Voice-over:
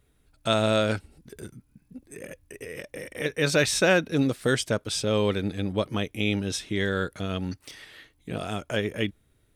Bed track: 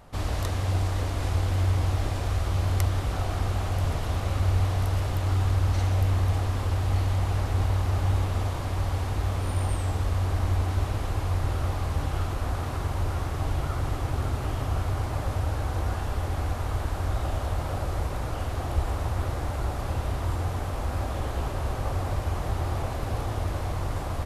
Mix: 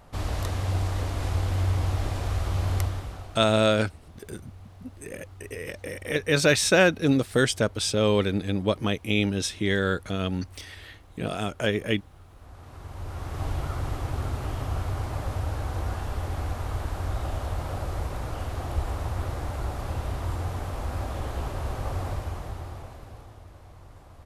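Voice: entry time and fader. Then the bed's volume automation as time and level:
2.90 s, +2.0 dB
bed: 0:02.78 −1 dB
0:03.66 −23 dB
0:12.24 −23 dB
0:13.43 −2 dB
0:22.07 −2 dB
0:23.44 −19 dB

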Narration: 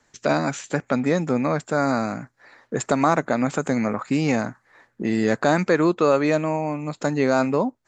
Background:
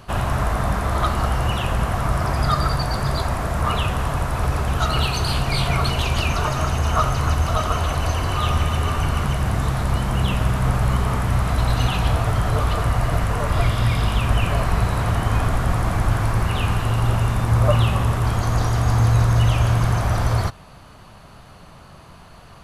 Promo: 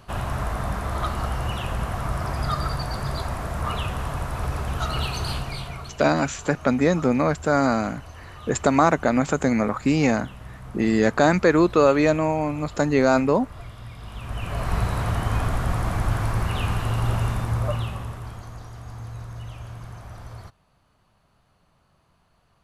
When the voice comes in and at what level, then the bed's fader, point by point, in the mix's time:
5.75 s, +1.5 dB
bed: 0:05.31 −6 dB
0:06.01 −20.5 dB
0:13.97 −20.5 dB
0:14.74 −4 dB
0:17.28 −4 dB
0:18.62 −20 dB

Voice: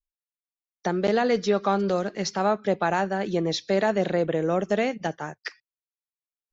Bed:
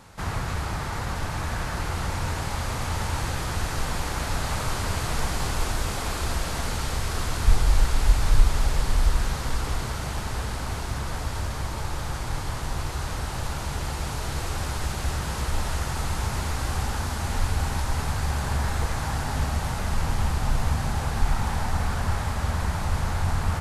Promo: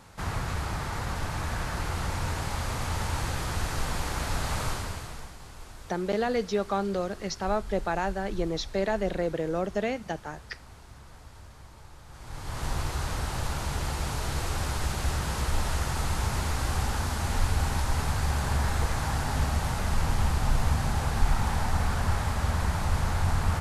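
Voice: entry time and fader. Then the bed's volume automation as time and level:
5.05 s, −5.0 dB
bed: 0:04.67 −2.5 dB
0:05.37 −19 dB
0:12.06 −19 dB
0:12.65 −1 dB

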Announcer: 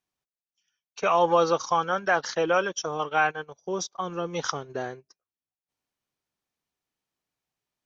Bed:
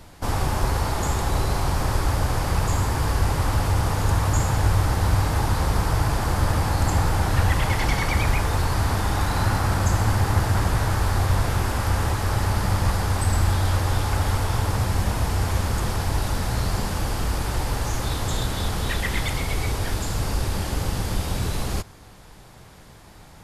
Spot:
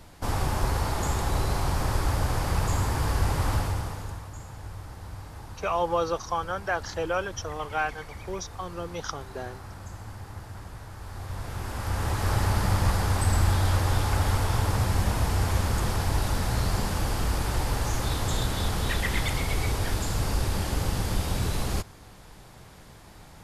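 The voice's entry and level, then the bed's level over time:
4.60 s, −5.0 dB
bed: 0:03.55 −3.5 dB
0:04.30 −20 dB
0:10.93 −20 dB
0:12.28 −2 dB

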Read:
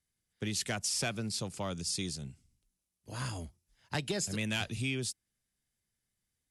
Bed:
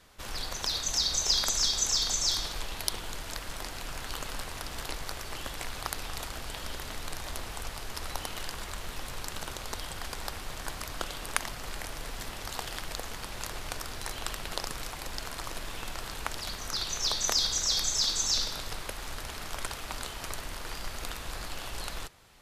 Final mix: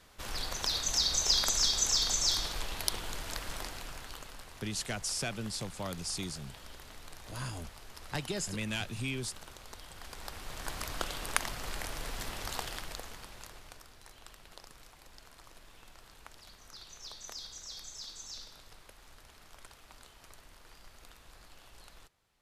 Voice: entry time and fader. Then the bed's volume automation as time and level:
4.20 s, −2.0 dB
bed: 0:03.56 −1 dB
0:04.36 −11.5 dB
0:09.85 −11.5 dB
0:10.81 −0.5 dB
0:12.54 −0.5 dB
0:13.94 −17.5 dB

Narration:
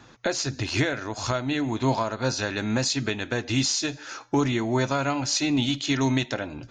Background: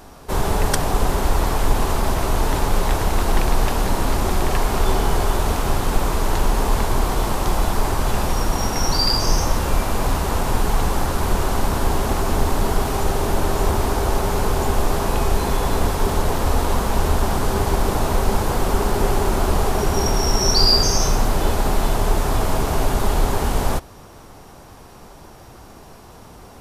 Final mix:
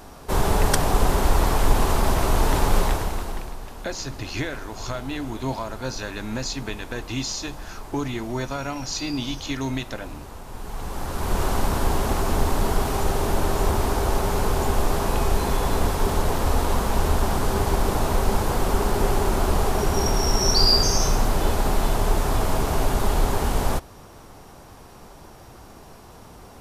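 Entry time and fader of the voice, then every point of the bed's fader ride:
3.60 s, −4.5 dB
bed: 0:02.80 −0.5 dB
0:03.60 −18.5 dB
0:10.47 −18.5 dB
0:11.42 −2.5 dB

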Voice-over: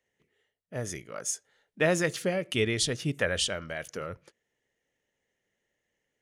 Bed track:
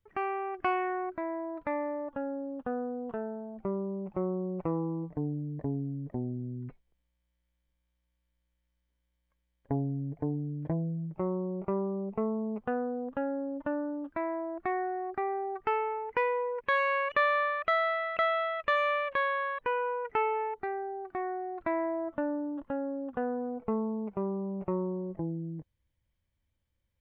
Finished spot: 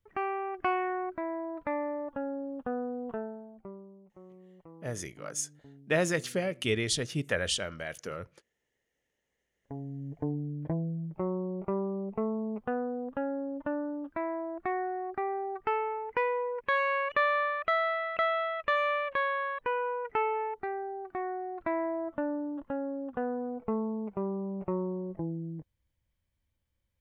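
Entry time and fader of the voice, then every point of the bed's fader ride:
4.10 s, −2.0 dB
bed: 0:03.17 0 dB
0:04.07 −20.5 dB
0:09.20 −20.5 dB
0:10.23 −0.5 dB

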